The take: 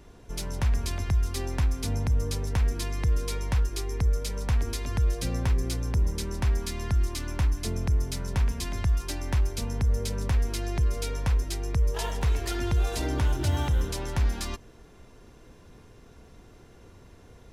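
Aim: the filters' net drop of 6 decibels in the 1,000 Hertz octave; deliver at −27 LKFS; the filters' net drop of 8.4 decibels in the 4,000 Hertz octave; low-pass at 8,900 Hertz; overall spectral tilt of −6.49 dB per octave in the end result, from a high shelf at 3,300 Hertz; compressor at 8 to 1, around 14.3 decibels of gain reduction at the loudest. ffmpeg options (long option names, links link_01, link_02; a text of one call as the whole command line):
ffmpeg -i in.wav -af "lowpass=8900,equalizer=frequency=1000:width_type=o:gain=-7,highshelf=frequency=3300:gain=-7.5,equalizer=frequency=4000:width_type=o:gain=-4.5,acompressor=threshold=-35dB:ratio=8,volume=13.5dB" out.wav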